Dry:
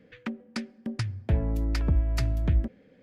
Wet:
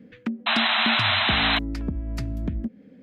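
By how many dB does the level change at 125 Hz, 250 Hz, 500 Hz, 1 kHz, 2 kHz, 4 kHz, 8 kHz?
−4.5 dB, +5.0 dB, +4.5 dB, +19.0 dB, +20.0 dB, +22.5 dB, can't be measured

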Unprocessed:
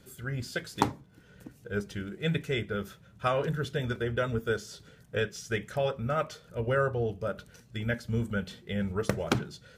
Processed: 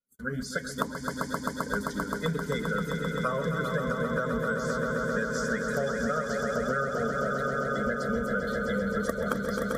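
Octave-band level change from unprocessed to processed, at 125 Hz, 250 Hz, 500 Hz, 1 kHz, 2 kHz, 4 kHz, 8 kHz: −2.0, +4.0, +2.5, +4.5, +5.5, −1.5, +4.5 decibels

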